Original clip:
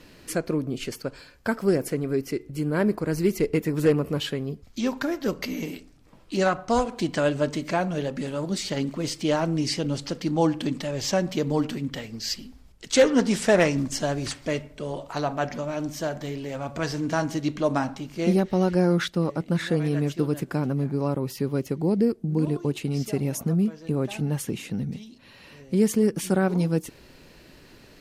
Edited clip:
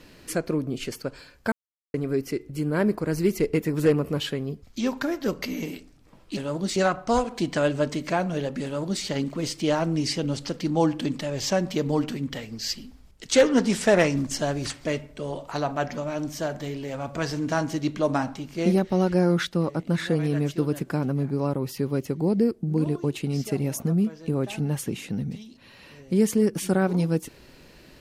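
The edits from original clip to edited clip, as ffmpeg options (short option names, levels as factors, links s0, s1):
-filter_complex "[0:a]asplit=5[s0][s1][s2][s3][s4];[s0]atrim=end=1.52,asetpts=PTS-STARTPTS,afade=t=out:st=1.516:d=0.004:c=hsin[s5];[s1]atrim=start=1.52:end=1.94,asetpts=PTS-STARTPTS,volume=0[s6];[s2]atrim=start=1.94:end=6.372,asetpts=PTS-STARTPTS,afade=t=in:d=0.004:c=hsin[s7];[s3]atrim=start=8.248:end=8.642[s8];[s4]atrim=start=6.368[s9];[s5][s6][s7]concat=n=3:v=0:a=1[s10];[s10][s8]acrossfade=d=0.004:c1=hsin:c2=hsin[s11];[s11][s9]acrossfade=d=0.004:c1=hsin:c2=hsin"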